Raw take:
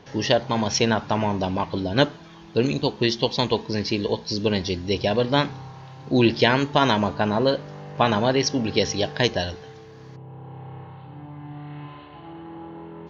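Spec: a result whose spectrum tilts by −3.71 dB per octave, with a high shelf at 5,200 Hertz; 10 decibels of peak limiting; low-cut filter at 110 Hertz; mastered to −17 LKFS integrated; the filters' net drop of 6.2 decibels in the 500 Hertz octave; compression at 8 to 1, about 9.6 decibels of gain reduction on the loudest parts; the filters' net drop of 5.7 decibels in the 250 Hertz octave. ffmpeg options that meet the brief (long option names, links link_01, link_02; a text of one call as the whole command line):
ffmpeg -i in.wav -af "highpass=110,equalizer=frequency=250:width_type=o:gain=-5,equalizer=frequency=500:width_type=o:gain=-6.5,highshelf=frequency=5200:gain=8.5,acompressor=threshold=-25dB:ratio=8,volume=15dB,alimiter=limit=-3dB:level=0:latency=1" out.wav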